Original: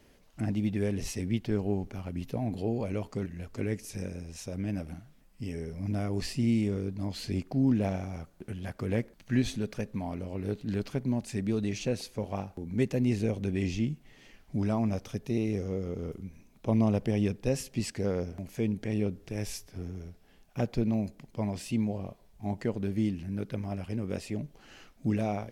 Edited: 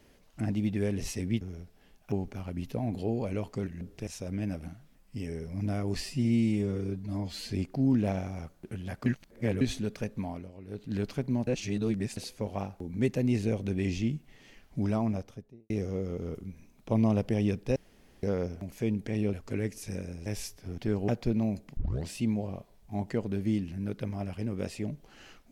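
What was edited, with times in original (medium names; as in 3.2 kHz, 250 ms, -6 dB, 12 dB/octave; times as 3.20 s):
1.41–1.71 s: swap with 19.88–20.59 s
3.40–4.33 s: swap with 19.10–19.36 s
6.28–7.26 s: stretch 1.5×
8.83–9.38 s: reverse
10.00–10.73 s: dip -11.5 dB, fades 0.29 s
11.24–11.94 s: reverse
14.69–15.47 s: studio fade out
17.53–18.00 s: room tone
21.28 s: tape start 0.30 s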